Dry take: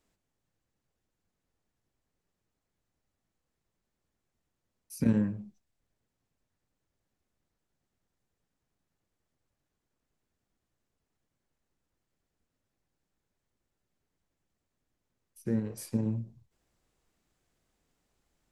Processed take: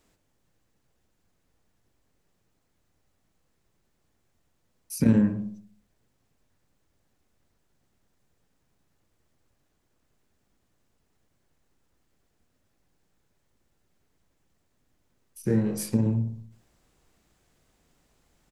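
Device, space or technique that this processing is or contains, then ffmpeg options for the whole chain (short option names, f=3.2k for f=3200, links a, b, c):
parallel compression: -filter_complex "[0:a]asettb=1/sr,asplit=3[a][b][c];[a]atrim=end=15.414[d];[b]atrim=start=15.41:end=15.83,asetpts=PTS-STARTPTS,afade=t=in:d=0.004:c=qsin,afade=t=out:st=0.416:d=0.004:c=qsin,asplit=2[e][f];[f]adelay=24,volume=-2.5dB[g];[e][g]amix=inputs=2:normalize=0,atrim=end_sample=18522[h];[c]atrim=start=15.826[i];[d][h]acrossfade=d=0.004:c1=hsin:c2=qsin[j];[j][i]acrossfade=d=0.004:c1=qsin:c2=hsin,asplit=2[k][l];[l]acompressor=threshold=-37dB:ratio=6,volume=-1.5dB[m];[k][m]amix=inputs=2:normalize=0,asplit=2[n][o];[o]adelay=62,lowpass=f=1.3k:p=1,volume=-9dB,asplit=2[p][q];[q]adelay=62,lowpass=f=1.3k:p=1,volume=0.54,asplit=2[r][s];[s]adelay=62,lowpass=f=1.3k:p=1,volume=0.54,asplit=2[t][u];[u]adelay=62,lowpass=f=1.3k:p=1,volume=0.54,asplit=2[v][w];[w]adelay=62,lowpass=f=1.3k:p=1,volume=0.54,asplit=2[x][y];[y]adelay=62,lowpass=f=1.3k:p=1,volume=0.54[z];[n][p][r][t][v][x][z]amix=inputs=7:normalize=0,volume=4dB"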